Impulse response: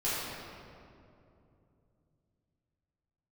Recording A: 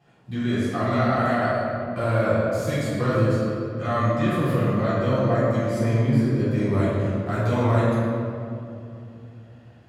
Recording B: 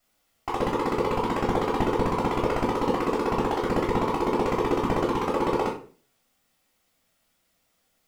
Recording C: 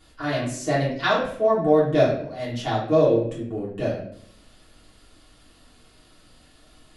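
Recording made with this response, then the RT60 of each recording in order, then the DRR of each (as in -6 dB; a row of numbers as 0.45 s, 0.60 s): A; 2.7 s, 0.40 s, 0.65 s; -12.5 dB, -5.0 dB, -7.5 dB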